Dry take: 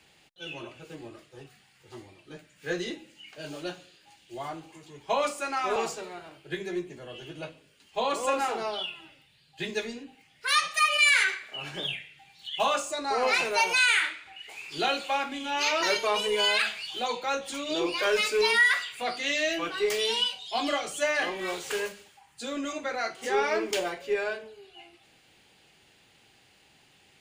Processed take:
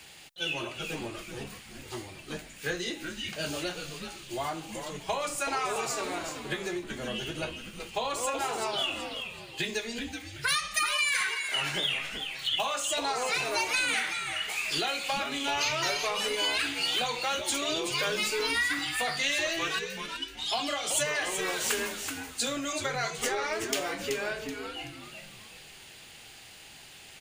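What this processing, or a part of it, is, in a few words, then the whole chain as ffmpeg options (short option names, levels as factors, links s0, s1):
ASMR close-microphone chain: -filter_complex "[0:a]lowshelf=f=150:g=7.5,acompressor=threshold=0.0158:ratio=8,highshelf=f=6400:g=8,asplit=3[s0][s1][s2];[s0]afade=t=out:st=19.78:d=0.02[s3];[s1]agate=range=0.158:threshold=0.02:ratio=16:detection=peak,afade=t=in:st=19.78:d=0.02,afade=t=out:st=20.37:d=0.02[s4];[s2]afade=t=in:st=20.37:d=0.02[s5];[s3][s4][s5]amix=inputs=3:normalize=0,lowshelf=f=480:g=-7.5,asplit=5[s6][s7][s8][s9][s10];[s7]adelay=379,afreqshift=-140,volume=0.447[s11];[s8]adelay=758,afreqshift=-280,volume=0.151[s12];[s9]adelay=1137,afreqshift=-420,volume=0.0519[s13];[s10]adelay=1516,afreqshift=-560,volume=0.0176[s14];[s6][s11][s12][s13][s14]amix=inputs=5:normalize=0,volume=2.82"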